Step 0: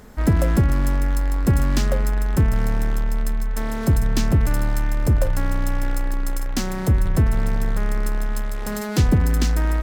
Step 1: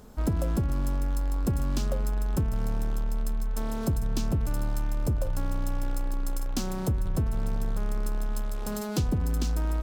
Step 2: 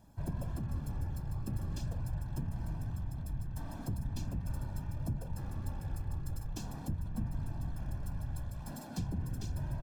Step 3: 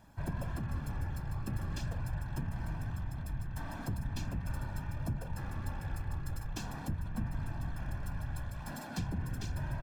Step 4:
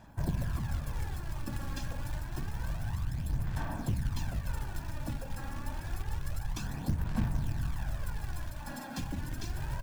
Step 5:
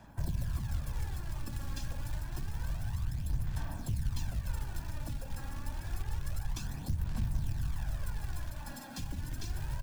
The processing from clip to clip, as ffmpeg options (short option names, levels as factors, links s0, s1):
-af "equalizer=f=1900:t=o:w=0.54:g=-11,acompressor=threshold=0.126:ratio=6,volume=0.562"
-af "aecho=1:1:1.2:0.76,afftfilt=real='hypot(re,im)*cos(2*PI*random(0))':imag='hypot(re,im)*sin(2*PI*random(1))':win_size=512:overlap=0.75,volume=0.398"
-af "equalizer=f=1800:t=o:w=1.9:g=10"
-af "bandreject=f=91.32:t=h:w=4,bandreject=f=182.64:t=h:w=4,bandreject=f=273.96:t=h:w=4,bandreject=f=365.28:t=h:w=4,bandreject=f=456.6:t=h:w=4,acrusher=bits=4:mode=log:mix=0:aa=0.000001,aphaser=in_gain=1:out_gain=1:delay=3.7:decay=0.48:speed=0.28:type=sinusoidal"
-filter_complex "[0:a]acrossover=split=130|3000[s0][s1][s2];[s1]acompressor=threshold=0.00398:ratio=2.5[s3];[s0][s3][s2]amix=inputs=3:normalize=0"